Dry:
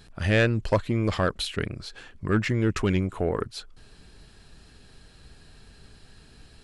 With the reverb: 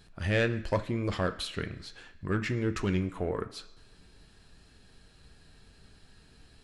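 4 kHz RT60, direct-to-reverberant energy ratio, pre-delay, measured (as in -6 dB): 0.90 s, 7.5 dB, 10 ms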